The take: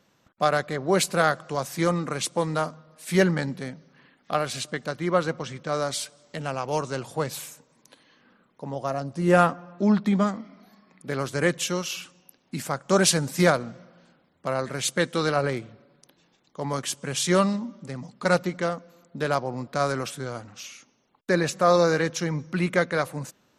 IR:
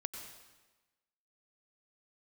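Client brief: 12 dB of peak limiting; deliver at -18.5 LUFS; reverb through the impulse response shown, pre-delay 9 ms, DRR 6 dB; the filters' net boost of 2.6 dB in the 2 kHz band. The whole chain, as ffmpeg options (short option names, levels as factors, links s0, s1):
-filter_complex "[0:a]equalizer=f=2000:t=o:g=3.5,alimiter=limit=0.158:level=0:latency=1,asplit=2[s0][s1];[1:a]atrim=start_sample=2205,adelay=9[s2];[s1][s2]afir=irnorm=-1:irlink=0,volume=0.562[s3];[s0][s3]amix=inputs=2:normalize=0,volume=3.16"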